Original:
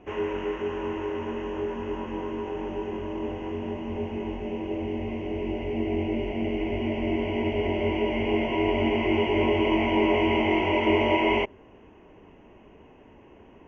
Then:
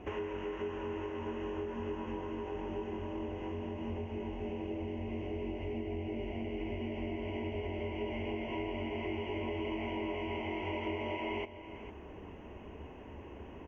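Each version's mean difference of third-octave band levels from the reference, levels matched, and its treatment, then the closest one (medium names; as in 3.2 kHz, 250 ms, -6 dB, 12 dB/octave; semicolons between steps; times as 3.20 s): 3.5 dB: peaking EQ 73 Hz +10.5 dB 0.47 oct; compression 5:1, threshold -39 dBFS, peak gain reduction 18.5 dB; delay 453 ms -13 dB; trim +2 dB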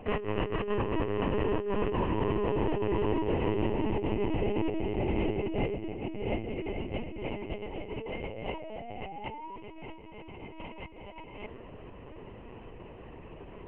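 7.5 dB: compressor with a negative ratio -32 dBFS, ratio -0.5; painted sound rise, 7.89–9.56 s, 430–990 Hz -44 dBFS; LPC vocoder at 8 kHz pitch kept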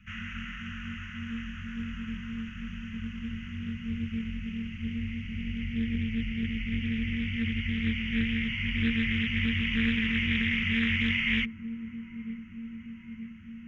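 10.5 dB: Chebyshev band-stop 230–1300 Hz, order 5; on a send: feedback echo behind a band-pass 923 ms, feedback 68%, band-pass 410 Hz, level -7 dB; on the sum: loudspeaker Doppler distortion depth 0.24 ms; trim +2 dB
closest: first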